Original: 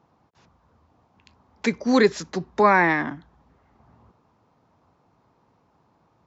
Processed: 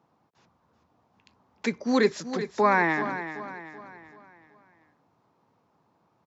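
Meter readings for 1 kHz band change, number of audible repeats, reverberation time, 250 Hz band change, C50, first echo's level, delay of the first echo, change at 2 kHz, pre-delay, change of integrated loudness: −4.0 dB, 4, no reverb audible, −4.5 dB, no reverb audible, −11.0 dB, 382 ms, −4.0 dB, no reverb audible, −5.0 dB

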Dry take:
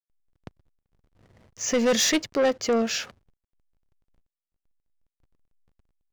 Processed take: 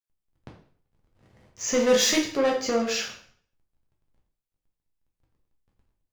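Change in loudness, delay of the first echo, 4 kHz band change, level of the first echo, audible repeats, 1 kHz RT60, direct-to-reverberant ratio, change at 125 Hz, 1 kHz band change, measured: 0.0 dB, no echo audible, +0.5 dB, no echo audible, no echo audible, 0.50 s, −1.5 dB, can't be measured, +0.5 dB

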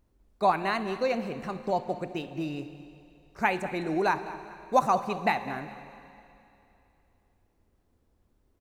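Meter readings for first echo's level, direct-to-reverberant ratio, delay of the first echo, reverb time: −16.5 dB, 10.5 dB, 206 ms, 2.8 s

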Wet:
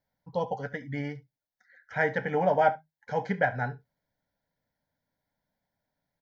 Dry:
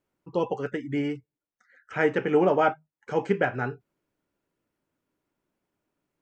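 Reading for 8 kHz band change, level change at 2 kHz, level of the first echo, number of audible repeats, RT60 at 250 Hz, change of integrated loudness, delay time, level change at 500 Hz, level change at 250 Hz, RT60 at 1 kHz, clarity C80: can't be measured, 0.0 dB, −20.0 dB, 1, no reverb audible, −3.0 dB, 70 ms, −4.0 dB, −7.5 dB, no reverb audible, no reverb audible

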